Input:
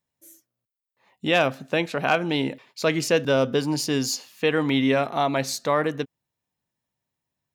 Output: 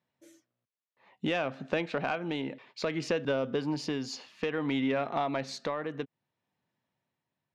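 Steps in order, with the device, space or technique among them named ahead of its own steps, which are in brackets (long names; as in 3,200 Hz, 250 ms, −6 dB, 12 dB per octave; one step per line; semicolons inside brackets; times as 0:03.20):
AM radio (band-pass filter 120–3,400 Hz; downward compressor 6 to 1, threshold −30 dBFS, peak gain reduction 14 dB; soft clipping −20.5 dBFS, distortion −23 dB; amplitude tremolo 0.6 Hz, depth 38%)
level +4 dB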